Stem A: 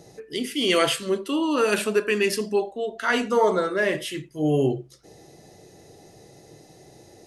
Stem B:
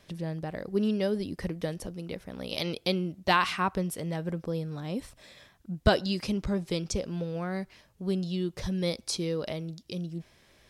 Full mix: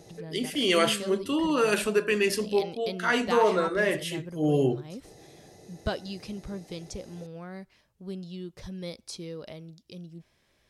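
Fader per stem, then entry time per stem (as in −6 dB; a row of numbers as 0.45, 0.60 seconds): −2.5, −8.0 decibels; 0.00, 0.00 seconds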